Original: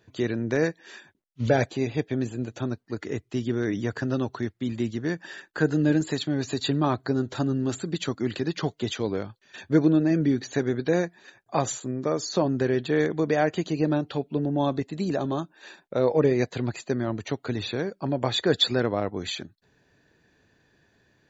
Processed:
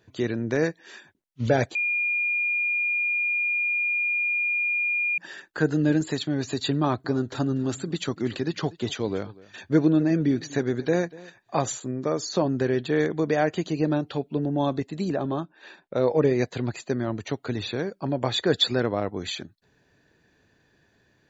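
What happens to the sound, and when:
1.75–5.18 s: bleep 2.42 kHz -22 dBFS
6.80–11.63 s: delay 242 ms -21 dB
15.11–15.94 s: low-pass 2.7 kHz -> 5 kHz

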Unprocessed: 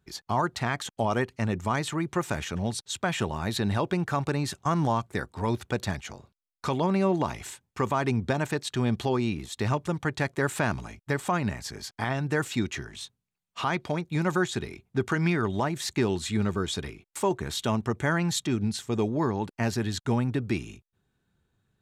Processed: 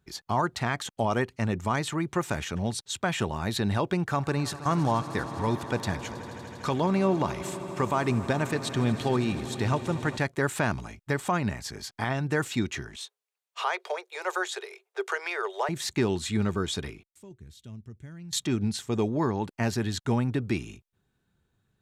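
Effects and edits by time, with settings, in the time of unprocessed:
4.03–10.17 s: echo with a slow build-up 80 ms, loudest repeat 5, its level -18 dB
12.96–15.69 s: steep high-pass 390 Hz 96 dB/octave
17.03–18.33 s: amplifier tone stack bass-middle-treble 10-0-1

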